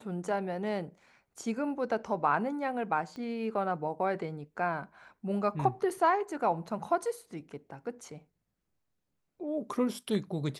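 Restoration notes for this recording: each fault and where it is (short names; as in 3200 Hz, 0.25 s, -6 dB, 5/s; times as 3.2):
3.16 pop -32 dBFS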